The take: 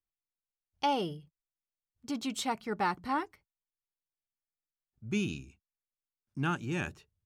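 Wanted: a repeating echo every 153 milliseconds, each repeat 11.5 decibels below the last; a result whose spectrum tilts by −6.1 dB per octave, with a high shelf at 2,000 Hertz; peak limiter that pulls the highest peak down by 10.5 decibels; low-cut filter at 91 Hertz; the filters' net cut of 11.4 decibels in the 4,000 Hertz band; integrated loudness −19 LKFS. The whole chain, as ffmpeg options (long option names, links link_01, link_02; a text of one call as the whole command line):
ffmpeg -i in.wav -af "highpass=91,highshelf=frequency=2000:gain=-8.5,equalizer=frequency=4000:width_type=o:gain=-7,alimiter=level_in=7.5dB:limit=-24dB:level=0:latency=1,volume=-7.5dB,aecho=1:1:153|306|459:0.266|0.0718|0.0194,volume=22.5dB" out.wav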